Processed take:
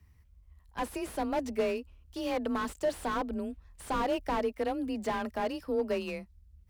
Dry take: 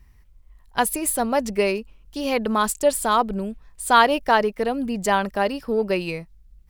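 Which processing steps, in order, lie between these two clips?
frequency shifter +27 Hz
slew-rate limiting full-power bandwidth 88 Hz
level −8 dB

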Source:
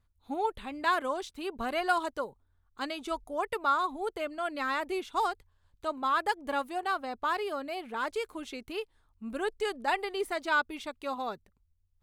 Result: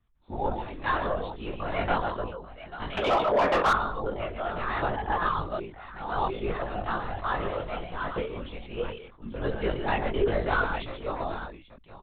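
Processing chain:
0:07.38–0:07.98: one scale factor per block 3 bits
0:09.75–0:10.62: parametric band 190 Hz +10 dB 1.8 octaves
multi-tap delay 46/138/835 ms −13.5/−7.5/−12.5 dB
linear-prediction vocoder at 8 kHz whisper
multi-voice chorus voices 6, 1.3 Hz, delay 20 ms, depth 3 ms
0:02.97–0:03.73: mid-hump overdrive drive 25 dB, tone 2,500 Hz, clips at −17.5 dBFS
dynamic equaliser 430 Hz, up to +4 dB, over −41 dBFS, Q 1
0:04.82–0:06.62: reverse
level that may fall only so fast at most 91 dB per second
level +2 dB

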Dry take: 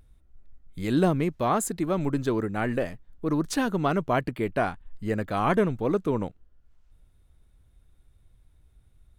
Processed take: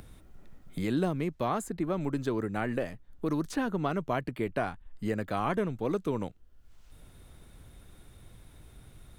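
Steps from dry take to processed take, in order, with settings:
multiband upward and downward compressor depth 70%
level −5.5 dB

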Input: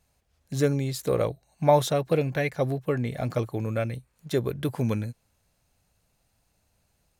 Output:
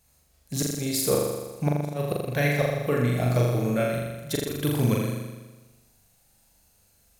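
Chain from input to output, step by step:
high-shelf EQ 6,000 Hz +11.5 dB
gate with flip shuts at −14 dBFS, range −33 dB
flutter between parallel walls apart 7 metres, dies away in 1.2 s

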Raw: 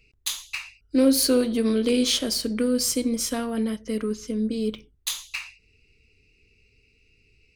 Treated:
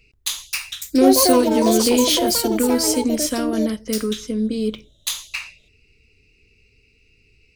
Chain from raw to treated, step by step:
delay with pitch and tempo change per echo 343 ms, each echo +6 semitones, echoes 2
level +4 dB

